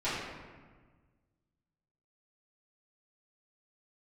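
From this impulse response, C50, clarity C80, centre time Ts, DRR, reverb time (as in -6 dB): -0.5 dB, 2.0 dB, 89 ms, -14.0 dB, 1.5 s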